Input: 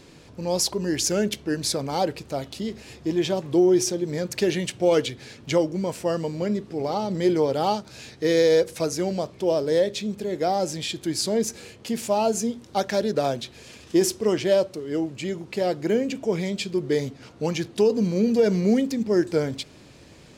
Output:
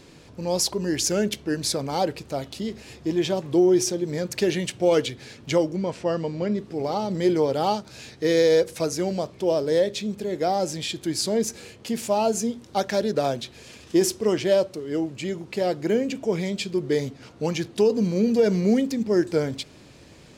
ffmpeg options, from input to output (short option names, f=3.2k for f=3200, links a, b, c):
-filter_complex "[0:a]asettb=1/sr,asplit=3[a][b][c];[a]atrim=end=5.764[d];[b]atrim=start=5.76:end=6.58,asetpts=PTS-STARTPTS,afade=t=in:d=0.004:c=qsin,afade=t=out:st=0.816:d=0.004:c=qsin,lowpass=4.8k[e];[c]atrim=start=6.576[f];[d][e]acrossfade=d=0.004:c1=hsin:c2=qsin[g];[g][f]acrossfade=d=0.004:c1=qsin:c2=hsin"